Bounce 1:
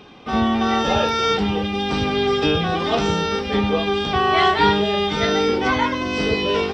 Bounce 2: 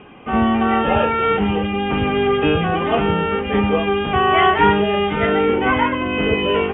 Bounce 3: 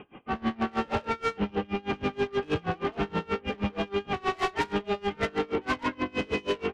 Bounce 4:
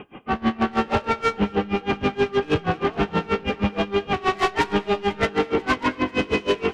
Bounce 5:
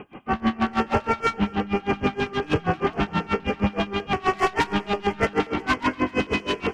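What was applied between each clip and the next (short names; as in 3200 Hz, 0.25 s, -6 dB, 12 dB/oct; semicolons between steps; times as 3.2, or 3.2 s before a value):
steep low-pass 3100 Hz 96 dB/oct; gain +2.5 dB
soft clip -18.5 dBFS, distortion -9 dB; bell 330 Hz +2.5 dB 0.77 oct; dB-linear tremolo 6.3 Hz, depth 28 dB; gain -2.5 dB
thinning echo 0.492 s, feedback 67%, high-pass 1200 Hz, level -19 dB; on a send at -18 dB: reverb RT60 1.2 s, pre-delay 0.12 s; on the sum: gain +7 dB
LFO notch square 7.5 Hz 460–3800 Hz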